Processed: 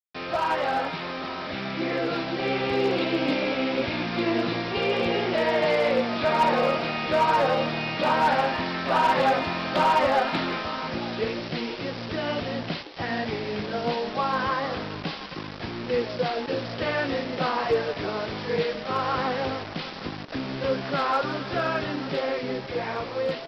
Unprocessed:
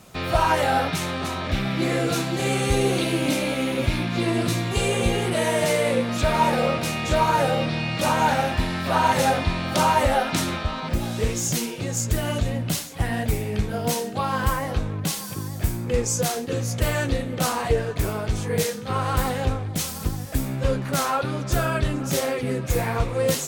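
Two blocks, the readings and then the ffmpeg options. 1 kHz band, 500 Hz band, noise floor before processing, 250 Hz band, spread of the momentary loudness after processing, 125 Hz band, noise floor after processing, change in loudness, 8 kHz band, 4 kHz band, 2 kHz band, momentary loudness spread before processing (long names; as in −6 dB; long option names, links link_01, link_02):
−0.5 dB, −0.5 dB, −32 dBFS, −3.0 dB, 10 LU, −11.0 dB, −37 dBFS, −2.5 dB, below −20 dB, −2.0 dB, −0.5 dB, 7 LU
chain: -filter_complex "[0:a]highpass=230,lowpass=3300,aresample=11025,acrusher=bits=5:mix=0:aa=0.000001,aresample=44100,asoftclip=type=hard:threshold=-15.5dB,dynaudnorm=framelen=630:gausssize=7:maxgain=4dB,asplit=5[link_01][link_02][link_03][link_04][link_05];[link_02]adelay=159,afreqshift=140,volume=-14.5dB[link_06];[link_03]adelay=318,afreqshift=280,volume=-21.8dB[link_07];[link_04]adelay=477,afreqshift=420,volume=-29.2dB[link_08];[link_05]adelay=636,afreqshift=560,volume=-36.5dB[link_09];[link_01][link_06][link_07][link_08][link_09]amix=inputs=5:normalize=0,volume=-4dB"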